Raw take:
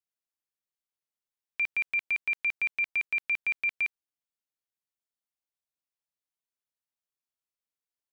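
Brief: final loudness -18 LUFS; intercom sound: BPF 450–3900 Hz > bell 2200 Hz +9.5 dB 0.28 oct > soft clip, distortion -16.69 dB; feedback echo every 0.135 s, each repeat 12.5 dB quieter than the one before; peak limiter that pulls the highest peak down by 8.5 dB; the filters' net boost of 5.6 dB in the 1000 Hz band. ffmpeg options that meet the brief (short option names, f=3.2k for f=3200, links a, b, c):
-af "equalizer=f=1k:t=o:g=7,alimiter=level_in=5.5dB:limit=-24dB:level=0:latency=1,volume=-5.5dB,highpass=450,lowpass=3.9k,equalizer=f=2.2k:t=o:w=0.28:g=9.5,aecho=1:1:135|270|405:0.237|0.0569|0.0137,asoftclip=threshold=-26.5dB,volume=13.5dB"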